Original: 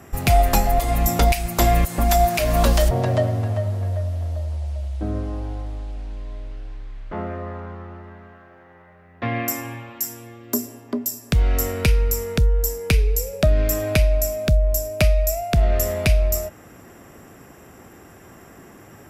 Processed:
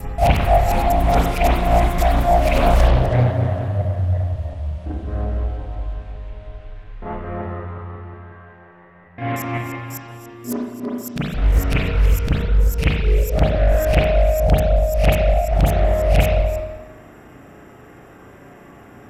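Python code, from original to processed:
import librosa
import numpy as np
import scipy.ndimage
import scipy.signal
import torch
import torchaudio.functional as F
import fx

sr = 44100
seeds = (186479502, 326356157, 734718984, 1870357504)

y = fx.local_reverse(x, sr, ms=180.0)
y = fx.rev_spring(y, sr, rt60_s=1.0, pass_ms=(33, 40), chirp_ms=55, drr_db=-9.5)
y = fx.doppler_dist(y, sr, depth_ms=0.73)
y = F.gain(torch.from_numpy(y), -7.5).numpy()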